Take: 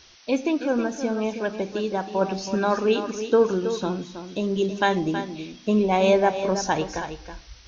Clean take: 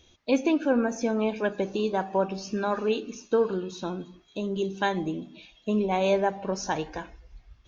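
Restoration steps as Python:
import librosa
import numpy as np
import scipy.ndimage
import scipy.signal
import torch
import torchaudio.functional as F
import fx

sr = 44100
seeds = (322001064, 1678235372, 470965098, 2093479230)

y = fx.noise_reduce(x, sr, print_start_s=7.16, print_end_s=7.66, reduce_db=14.0)
y = fx.fix_echo_inverse(y, sr, delay_ms=322, level_db=-10.0)
y = fx.gain(y, sr, db=fx.steps((0.0, 0.0), (2.21, -5.0)))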